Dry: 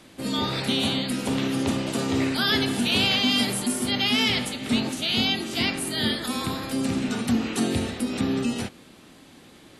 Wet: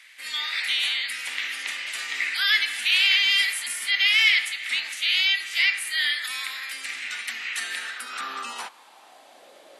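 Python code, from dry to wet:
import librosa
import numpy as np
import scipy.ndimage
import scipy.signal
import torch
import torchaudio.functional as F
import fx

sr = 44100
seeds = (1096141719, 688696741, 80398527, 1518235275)

y = fx.filter_sweep_highpass(x, sr, from_hz=2000.0, to_hz=590.0, start_s=7.51, end_s=9.51, q=4.5)
y = F.gain(torch.from_numpy(y), -1.5).numpy()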